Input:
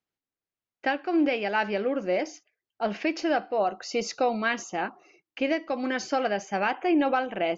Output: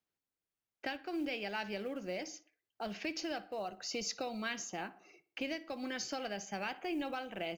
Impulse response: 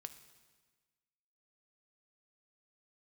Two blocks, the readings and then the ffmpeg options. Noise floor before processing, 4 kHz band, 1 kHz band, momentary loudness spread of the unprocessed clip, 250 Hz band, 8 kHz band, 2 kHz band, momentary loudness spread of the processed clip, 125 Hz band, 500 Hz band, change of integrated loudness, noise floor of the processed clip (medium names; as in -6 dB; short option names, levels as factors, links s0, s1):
under -85 dBFS, -5.0 dB, -14.5 dB, 8 LU, -13.0 dB, no reading, -11.5 dB, 6 LU, -8.5 dB, -14.0 dB, -12.5 dB, under -85 dBFS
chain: -filter_complex "[0:a]acrossover=split=150|3000[s0][s1][s2];[s1]acompressor=threshold=0.00794:ratio=2.5[s3];[s0][s3][s2]amix=inputs=3:normalize=0,acrusher=bits=8:mode=log:mix=0:aa=0.000001,asplit=2[s4][s5];[s5]adelay=60,lowpass=f=2800:p=1,volume=0.141,asplit=2[s6][s7];[s7]adelay=60,lowpass=f=2800:p=1,volume=0.46,asplit=2[s8][s9];[s9]adelay=60,lowpass=f=2800:p=1,volume=0.46,asplit=2[s10][s11];[s11]adelay=60,lowpass=f=2800:p=1,volume=0.46[s12];[s6][s8][s10][s12]amix=inputs=4:normalize=0[s13];[s4][s13]amix=inputs=2:normalize=0,volume=0.75"